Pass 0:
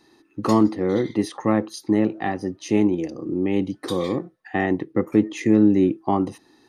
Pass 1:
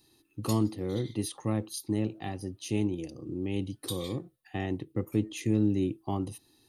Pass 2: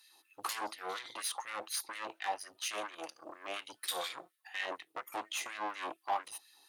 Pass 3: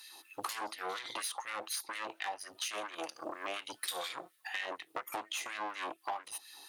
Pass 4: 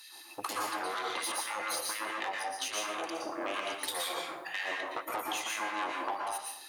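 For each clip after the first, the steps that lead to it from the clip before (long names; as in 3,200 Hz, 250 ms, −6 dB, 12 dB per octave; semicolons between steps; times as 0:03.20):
drawn EQ curve 120 Hz 0 dB, 180 Hz −10 dB, 1,900 Hz −16 dB, 2,800 Hz −4 dB, 4,000 Hz −3 dB, 5,800 Hz −6 dB, 11,000 Hz +8 dB
tube saturation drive 36 dB, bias 0.6; auto-filter high-pass sine 4.2 Hz 740–2,100 Hz; level +5.5 dB
downward compressor 6 to 1, threshold −47 dBFS, peak gain reduction 17.5 dB; level +10.5 dB
dense smooth reverb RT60 0.76 s, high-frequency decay 0.6×, pre-delay 105 ms, DRR −2 dB; level +1 dB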